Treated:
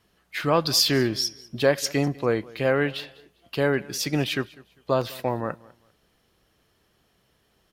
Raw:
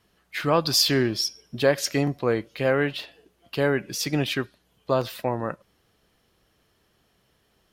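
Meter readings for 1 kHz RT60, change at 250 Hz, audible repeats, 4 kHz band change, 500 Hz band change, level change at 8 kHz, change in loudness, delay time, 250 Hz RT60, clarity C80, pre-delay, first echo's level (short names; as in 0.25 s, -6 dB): none, 0.0 dB, 2, 0.0 dB, 0.0 dB, 0.0 dB, 0.0 dB, 0.199 s, none, none, none, -22.5 dB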